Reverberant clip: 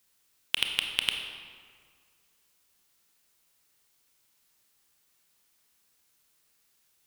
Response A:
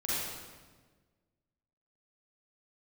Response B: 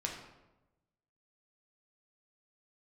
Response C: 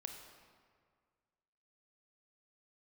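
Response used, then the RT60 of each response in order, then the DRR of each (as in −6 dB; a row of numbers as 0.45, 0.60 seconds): C; 1.4, 1.0, 1.9 seconds; −9.5, −1.0, 3.5 decibels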